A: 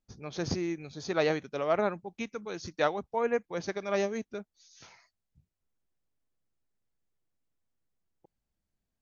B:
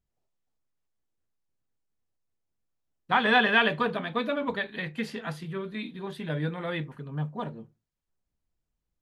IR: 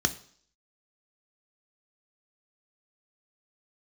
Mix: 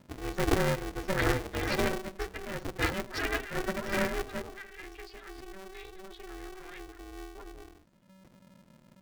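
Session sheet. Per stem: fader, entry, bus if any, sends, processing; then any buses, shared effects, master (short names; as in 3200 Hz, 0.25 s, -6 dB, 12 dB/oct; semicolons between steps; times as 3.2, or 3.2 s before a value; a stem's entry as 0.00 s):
-3.5 dB, 0.00 s, send -3 dB, HPF 45 Hz 12 dB/oct; noise-modulated delay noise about 1700 Hz, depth 0.34 ms
-16.0 dB, 0.00 s, no send, de-esser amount 90%; band shelf 550 Hz -11.5 dB 2.3 oct; fast leveller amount 70%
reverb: on, RT60 0.55 s, pre-delay 3 ms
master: loudest bins only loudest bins 16; polarity switched at an audio rate 190 Hz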